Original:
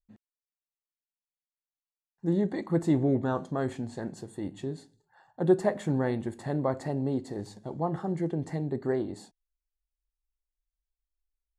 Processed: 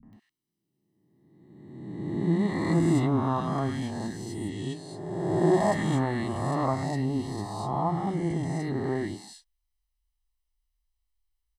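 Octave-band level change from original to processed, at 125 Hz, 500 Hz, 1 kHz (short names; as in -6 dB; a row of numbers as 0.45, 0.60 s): +4.0, +0.5, +7.5 dB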